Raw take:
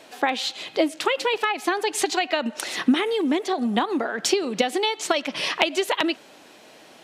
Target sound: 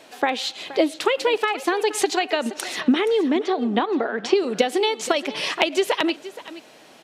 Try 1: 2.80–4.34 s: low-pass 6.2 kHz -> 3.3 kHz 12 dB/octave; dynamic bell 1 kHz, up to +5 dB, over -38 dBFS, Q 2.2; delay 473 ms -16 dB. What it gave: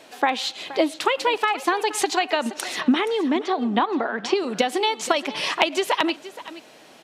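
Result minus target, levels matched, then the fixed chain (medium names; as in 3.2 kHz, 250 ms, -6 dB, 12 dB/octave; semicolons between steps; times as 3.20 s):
1 kHz band +3.0 dB
2.80–4.34 s: low-pass 6.2 kHz -> 3.3 kHz 12 dB/octave; dynamic bell 440 Hz, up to +5 dB, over -38 dBFS, Q 2.2; delay 473 ms -16 dB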